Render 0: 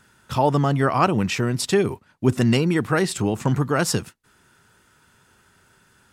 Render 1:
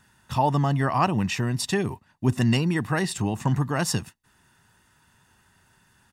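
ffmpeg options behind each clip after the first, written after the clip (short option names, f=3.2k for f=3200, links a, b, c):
-af "aecho=1:1:1.1:0.46,volume=-4dB"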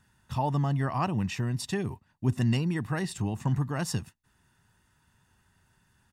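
-af "lowshelf=f=160:g=8,volume=-8dB"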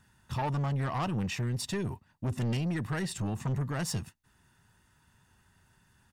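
-af "asoftclip=type=tanh:threshold=-28.5dB,volume=1.5dB"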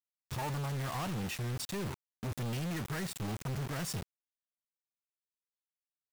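-af "acrusher=bits=5:mix=0:aa=0.000001,volume=-4.5dB"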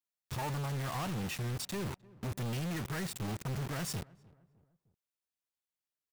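-filter_complex "[0:a]asplit=2[a][b];[b]adelay=305,lowpass=f=1.2k:p=1,volume=-22dB,asplit=2[c][d];[d]adelay=305,lowpass=f=1.2k:p=1,volume=0.47,asplit=2[e][f];[f]adelay=305,lowpass=f=1.2k:p=1,volume=0.47[g];[a][c][e][g]amix=inputs=4:normalize=0"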